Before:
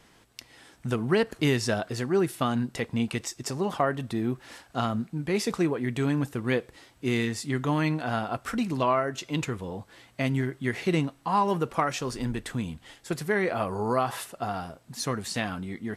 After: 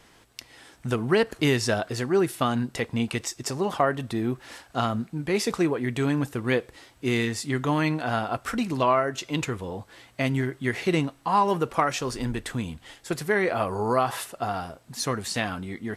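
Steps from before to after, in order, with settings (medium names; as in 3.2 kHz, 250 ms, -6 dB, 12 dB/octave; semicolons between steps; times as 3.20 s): peaking EQ 180 Hz -3.5 dB 1.1 oct; trim +3 dB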